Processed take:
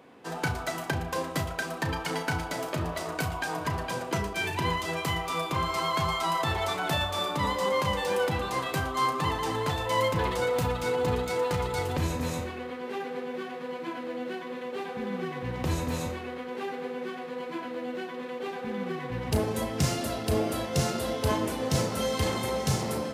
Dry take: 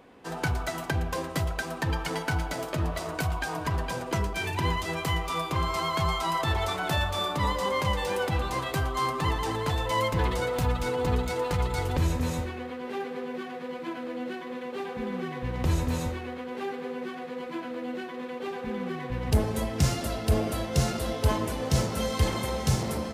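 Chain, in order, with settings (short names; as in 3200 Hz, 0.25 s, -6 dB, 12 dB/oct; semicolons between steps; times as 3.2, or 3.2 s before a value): HPF 110 Hz 12 dB/oct; on a send: flutter echo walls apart 5.9 m, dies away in 0.21 s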